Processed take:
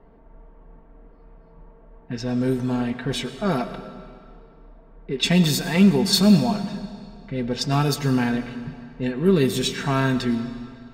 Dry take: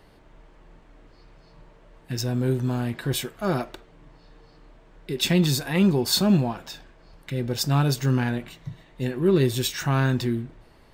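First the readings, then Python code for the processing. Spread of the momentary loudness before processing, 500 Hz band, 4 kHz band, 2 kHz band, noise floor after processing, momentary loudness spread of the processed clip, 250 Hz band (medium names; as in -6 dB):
16 LU, +2.0 dB, +2.5 dB, +2.5 dB, -50 dBFS, 17 LU, +4.0 dB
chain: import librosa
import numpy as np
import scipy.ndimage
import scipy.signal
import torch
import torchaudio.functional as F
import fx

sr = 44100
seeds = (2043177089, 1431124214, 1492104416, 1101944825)

y = fx.env_lowpass(x, sr, base_hz=990.0, full_db=-18.0)
y = y + 0.54 * np.pad(y, (int(4.4 * sr / 1000.0), 0))[:len(y)]
y = fx.rev_freeverb(y, sr, rt60_s=2.2, hf_ratio=0.9, predelay_ms=60, drr_db=11.0)
y = y * 10.0 ** (1.5 / 20.0)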